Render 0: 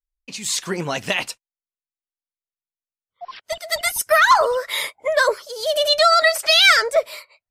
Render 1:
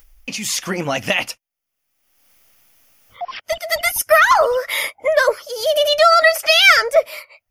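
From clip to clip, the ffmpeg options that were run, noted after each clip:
-filter_complex "[0:a]equalizer=f=160:t=o:w=0.33:g=-8,equalizer=f=400:t=o:w=0.33:g=-9,equalizer=f=1k:t=o:w=0.33:g=-6,equalizer=f=1.6k:t=o:w=0.33:g=-4,equalizer=f=4k:t=o:w=0.33:g=-11,equalizer=f=8k:t=o:w=0.33:g=-12,asplit=2[a][b];[b]acompressor=mode=upward:threshold=-19dB:ratio=2.5,volume=-2dB[c];[a][c]amix=inputs=2:normalize=0"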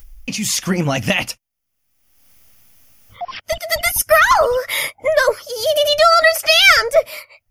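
-af "bass=f=250:g=11,treble=f=4k:g=3"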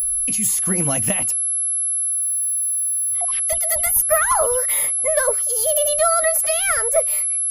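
-filter_complex "[0:a]acrossover=split=330|1500[a][b][c];[c]acompressor=threshold=-26dB:ratio=6[d];[a][b][d]amix=inputs=3:normalize=0,aeval=exprs='val(0)+0.0355*sin(2*PI*11000*n/s)':c=same,aexciter=amount=8.2:drive=1.8:freq=7.7k,volume=-5.5dB"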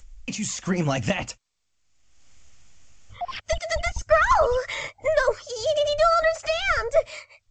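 -af "dynaudnorm=f=200:g=17:m=7dB,asubboost=boost=3:cutoff=120" -ar 16000 -c:a g722

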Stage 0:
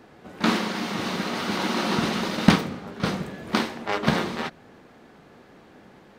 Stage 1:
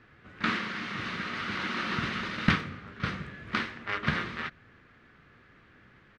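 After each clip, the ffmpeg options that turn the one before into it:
-af "firequalizer=gain_entry='entry(110,0);entry(180,-10);entry(820,-17);entry(1200,-3);entry(1800,0);entry(4000,-9);entry(12000,-28)':delay=0.05:min_phase=1"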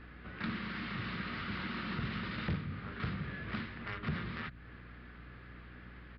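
-filter_complex "[0:a]acrossover=split=200[a][b];[b]acompressor=threshold=-42dB:ratio=6[c];[a][c]amix=inputs=2:normalize=0,aeval=exprs='val(0)+0.00178*(sin(2*PI*60*n/s)+sin(2*PI*2*60*n/s)/2+sin(2*PI*3*60*n/s)/3+sin(2*PI*4*60*n/s)/4+sin(2*PI*5*60*n/s)/5)':c=same,aresample=11025,asoftclip=type=tanh:threshold=-32.5dB,aresample=44100,volume=3dB"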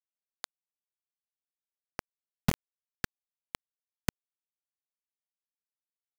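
-af "acrusher=bits=4:mix=0:aa=0.000001,volume=7.5dB"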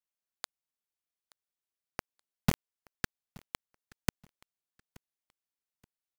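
-af "aecho=1:1:876|1752:0.0668|0.0201"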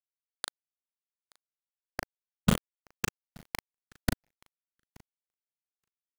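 -filter_complex "[0:a]afftfilt=real='re*pow(10,9/40*sin(2*PI*(0.74*log(max(b,1)*sr/1024/100)/log(2)-(1.4)*(pts-256)/sr)))':imag='im*pow(10,9/40*sin(2*PI*(0.74*log(max(b,1)*sr/1024/100)/log(2)-(1.4)*(pts-256)/sr)))':win_size=1024:overlap=0.75,aeval=exprs='sgn(val(0))*max(abs(val(0))-0.00335,0)':c=same,asplit=2[a][b];[b]adelay=38,volume=-4.5dB[c];[a][c]amix=inputs=2:normalize=0,volume=2.5dB"

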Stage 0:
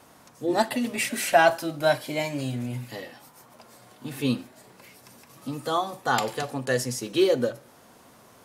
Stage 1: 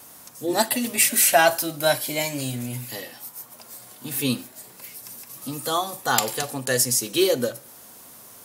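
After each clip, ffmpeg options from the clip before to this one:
-af "aemphasis=mode=production:type=75fm,volume=1dB"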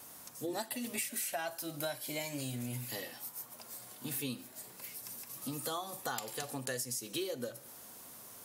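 -af "acompressor=threshold=-29dB:ratio=8,volume=-6dB"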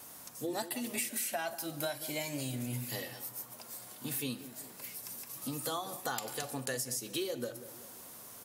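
-filter_complex "[0:a]asplit=2[a][b];[b]adelay=189,lowpass=f=1.1k:p=1,volume=-12.5dB,asplit=2[c][d];[d]adelay=189,lowpass=f=1.1k:p=1,volume=0.49,asplit=2[e][f];[f]adelay=189,lowpass=f=1.1k:p=1,volume=0.49,asplit=2[g][h];[h]adelay=189,lowpass=f=1.1k:p=1,volume=0.49,asplit=2[i][j];[j]adelay=189,lowpass=f=1.1k:p=1,volume=0.49[k];[a][c][e][g][i][k]amix=inputs=6:normalize=0,volume=1.5dB"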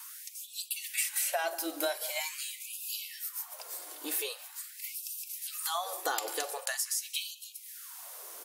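-af "afftfilt=real='re*gte(b*sr/1024,260*pow(2500/260,0.5+0.5*sin(2*PI*0.44*pts/sr)))':imag='im*gte(b*sr/1024,260*pow(2500/260,0.5+0.5*sin(2*PI*0.44*pts/sr)))':win_size=1024:overlap=0.75,volume=4.5dB"

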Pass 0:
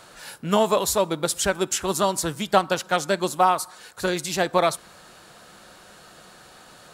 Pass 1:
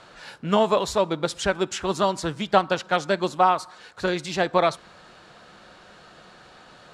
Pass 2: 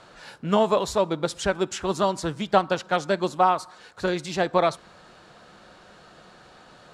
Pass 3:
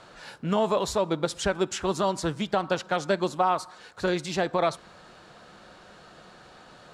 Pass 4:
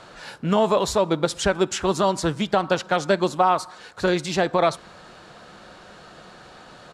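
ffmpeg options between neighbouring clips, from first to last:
-af "lowpass=4.5k"
-af "equalizer=f=2.6k:t=o:w=2.3:g=-3"
-af "alimiter=limit=-13.5dB:level=0:latency=1:release=71"
-af "aresample=32000,aresample=44100,volume=5dB"

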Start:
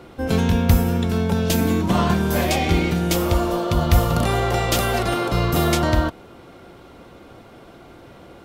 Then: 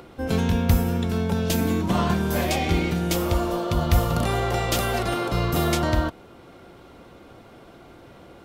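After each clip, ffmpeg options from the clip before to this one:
-af "acompressor=mode=upward:threshold=-40dB:ratio=2.5,volume=-3.5dB"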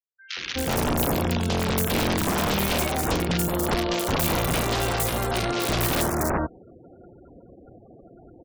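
-filter_complex "[0:a]aeval=exprs='(mod(6.68*val(0)+1,2)-1)/6.68':c=same,acrossover=split=1700|5900[a][b][c];[c]adelay=280[d];[a]adelay=370[e];[e][b][d]amix=inputs=3:normalize=0,afftfilt=real='re*gte(hypot(re,im),0.0112)':imag='im*gte(hypot(re,im),0.0112)':win_size=1024:overlap=0.75"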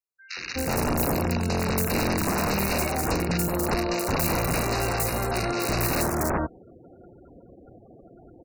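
-af "asuperstop=centerf=3300:order=12:qfactor=3.4,volume=-1dB"

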